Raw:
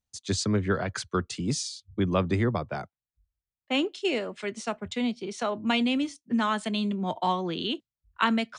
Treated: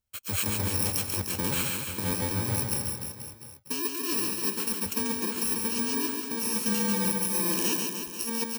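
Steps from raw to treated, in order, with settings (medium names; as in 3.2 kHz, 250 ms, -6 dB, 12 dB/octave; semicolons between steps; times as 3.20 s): bit-reversed sample order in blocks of 64 samples; peaking EQ 160 Hz -8.5 dB 0.24 oct; compressor with a negative ratio -29 dBFS, ratio -1; on a send: reverse bouncing-ball echo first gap 140 ms, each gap 1.15×, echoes 5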